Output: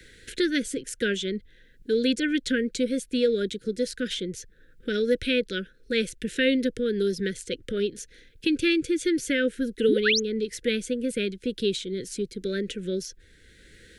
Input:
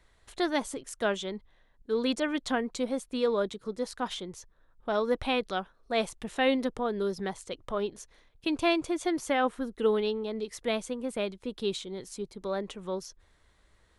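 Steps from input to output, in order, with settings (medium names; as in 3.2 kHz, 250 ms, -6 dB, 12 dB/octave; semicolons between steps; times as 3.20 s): painted sound rise, 9.88–10.20 s, 200–6900 Hz -26 dBFS; Chebyshev band-stop 510–1500 Hz, order 4; three bands compressed up and down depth 40%; trim +6 dB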